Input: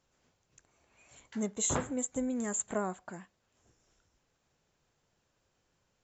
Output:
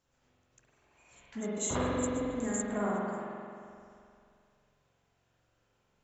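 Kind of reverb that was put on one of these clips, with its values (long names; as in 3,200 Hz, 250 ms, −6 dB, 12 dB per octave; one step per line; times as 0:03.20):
spring reverb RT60 2.4 s, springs 44 ms, chirp 70 ms, DRR −5.5 dB
level −3.5 dB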